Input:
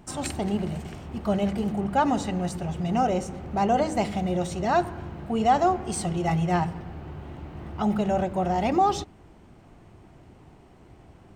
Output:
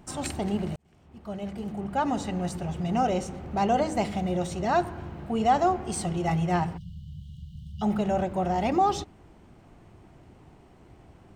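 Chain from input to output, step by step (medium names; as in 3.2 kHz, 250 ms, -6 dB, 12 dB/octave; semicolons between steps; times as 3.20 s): 0.76–2.48 s: fade in; 3.04–3.77 s: dynamic bell 3.7 kHz, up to +4 dB, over -47 dBFS, Q 1.1; 6.77–7.82 s: spectral selection erased 200–2800 Hz; trim -1.5 dB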